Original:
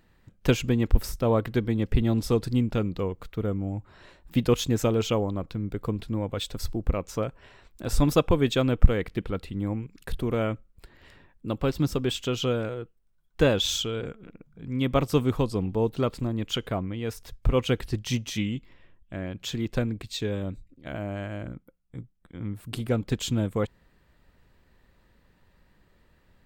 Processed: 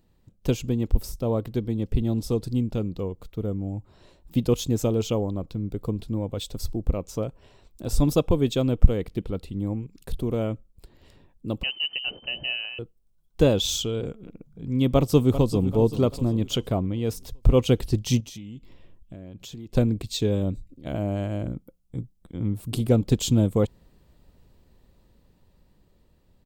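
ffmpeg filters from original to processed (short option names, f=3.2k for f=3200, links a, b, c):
-filter_complex "[0:a]asettb=1/sr,asplit=3[a][b][c];[a]atrim=end=11.634[d];[b]atrim=start=11.63:end=12.79,asetpts=PTS-STARTPTS,afade=t=in:d=0.004:c=qsin,afade=t=out:st=1.156:d=0.004:c=qsin,lowpass=f=2.6k:t=q:w=0.5098,lowpass=f=2.6k:t=q:w=0.6013,lowpass=f=2.6k:t=q:w=0.9,lowpass=f=2.6k:t=q:w=2.563,afreqshift=-3100[e];[c]atrim=start=12.786[f];[d][e]acrossfade=d=0.004:c1=hsin:c2=qsin[g];[g][f]acrossfade=d=0.004:c1=qsin:c2=hsin,asplit=2[h][i];[i]afade=t=in:st=14.94:d=0.01,afade=t=out:st=15.68:d=0.01,aecho=0:1:390|780|1170|1560|1950:0.251189|0.113035|0.0508657|0.0228896|0.0103003[j];[h][j]amix=inputs=2:normalize=0,asettb=1/sr,asplit=3[k][l][m];[k]atrim=end=18.204[n];[l]atrim=start=18.2:end=19.75,asetpts=PTS-STARTPTS,afade=t=in:d=0.004:c=qsin,afade=t=out:st=1.546:d=0.004:c=qsin,acompressor=threshold=-42dB:ratio=6:attack=3.2:release=140:knee=1:detection=peak[o];[m]atrim=start=19.746[p];[n][o]acrossfade=d=0.004:c1=hsin:c2=qsin[q];[q][p]acrossfade=d=0.004:c1=qsin:c2=hsin,equalizer=f=1.7k:t=o:w=1.4:g=-13,dynaudnorm=f=490:g=17:m=9dB,volume=-1dB"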